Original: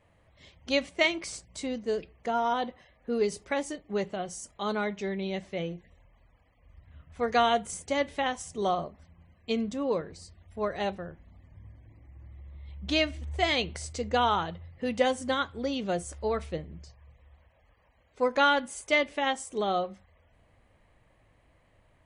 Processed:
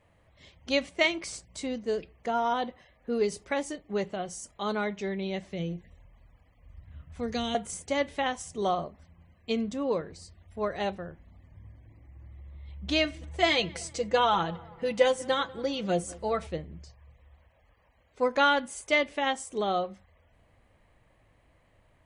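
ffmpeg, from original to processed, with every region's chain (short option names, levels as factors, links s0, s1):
-filter_complex "[0:a]asettb=1/sr,asplit=3[s0][s1][s2];[s0]atrim=end=5.504[s3];[s1]atrim=start=5.5:end=7.55,asetpts=PTS-STARTPTS,afade=t=in:d=0.004:c=qsin,afade=t=out:st=2.046:d=0.004:c=qsin,bass=f=250:g=5,treble=f=4000:g=2,acrossover=split=410|3000[s4][s5][s6];[s5]acompressor=threshold=0.00631:ratio=3:attack=3.2:release=140:knee=2.83:detection=peak[s7];[s4][s7][s6]amix=inputs=3:normalize=0[s8];[s2]atrim=start=7.546[s9];[s3][s8]acrossfade=d=0.004:c1=hsin:c2=qsin[s10];[s10][s9]acrossfade=d=0.004:c1=qsin:c2=hsin,asettb=1/sr,asplit=3[s11][s12][s13];[s11]atrim=end=13.044[s14];[s12]atrim=start=13.04:end=16.47,asetpts=PTS-STARTPTS,afade=t=in:d=0.004:c=qsin,afade=t=out:st=3.426:d=0.004:c=qsin,aecho=1:1:6:0.63,atrim=end_sample=151263,asplit=2[s15][s16];[s16]adelay=192,lowpass=f=2000:p=1,volume=0.0891,asplit=2[s17][s18];[s18]adelay=192,lowpass=f=2000:p=1,volume=0.55,asplit=2[s19][s20];[s20]adelay=192,lowpass=f=2000:p=1,volume=0.55,asplit=2[s21][s22];[s22]adelay=192,lowpass=f=2000:p=1,volume=0.55[s23];[s15][s17][s19][s21][s23]amix=inputs=5:normalize=0,atrim=end_sample=151263[s24];[s13]atrim=start=16.466[s25];[s14][s24]acrossfade=d=0.004:c1=hsin:c2=qsin[s26];[s26][s25]acrossfade=d=0.004:c1=qsin:c2=hsin"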